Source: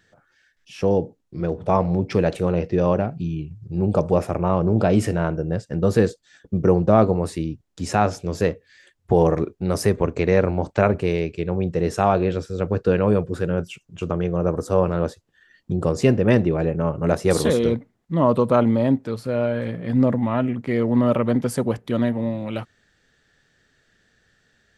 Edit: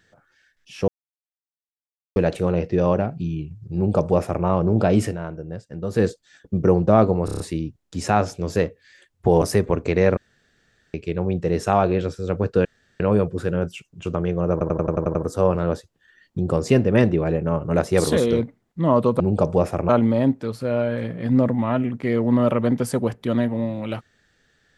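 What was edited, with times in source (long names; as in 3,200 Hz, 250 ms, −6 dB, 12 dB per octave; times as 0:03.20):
0:00.88–0:02.16: silence
0:03.76–0:04.45: duplicate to 0:18.53
0:05.03–0:06.05: duck −8.5 dB, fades 0.14 s
0:07.25: stutter 0.03 s, 6 plays
0:09.27–0:09.73: remove
0:10.48–0:11.25: fill with room tone
0:12.96: splice in room tone 0.35 s
0:14.48: stutter 0.09 s, 8 plays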